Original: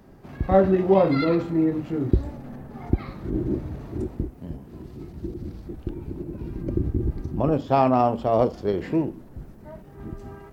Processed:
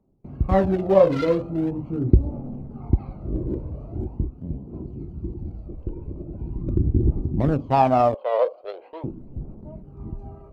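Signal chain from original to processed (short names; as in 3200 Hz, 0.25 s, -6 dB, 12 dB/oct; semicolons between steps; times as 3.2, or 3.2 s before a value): Wiener smoothing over 25 samples; 8.14–9.04 elliptic band-pass 520–3900 Hz, stop band 50 dB; gate with hold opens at -38 dBFS; phaser 0.42 Hz, delay 2.1 ms, feedback 50%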